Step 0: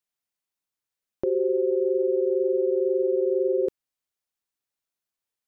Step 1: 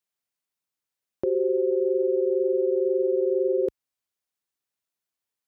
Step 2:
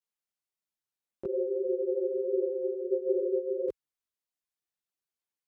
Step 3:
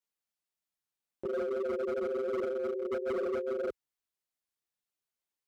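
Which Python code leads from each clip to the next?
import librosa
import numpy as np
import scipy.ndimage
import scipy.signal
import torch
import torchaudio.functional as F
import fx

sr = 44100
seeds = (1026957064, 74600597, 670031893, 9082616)

y1 = scipy.signal.sosfilt(scipy.signal.butter(2, 48.0, 'highpass', fs=sr, output='sos'), x)
y2 = fx.chorus_voices(y1, sr, voices=4, hz=1.2, base_ms=18, depth_ms=3.4, mix_pct=65)
y2 = y2 * librosa.db_to_amplitude(-4.0)
y3 = np.clip(10.0 ** (30.0 / 20.0) * y2, -1.0, 1.0) / 10.0 ** (30.0 / 20.0)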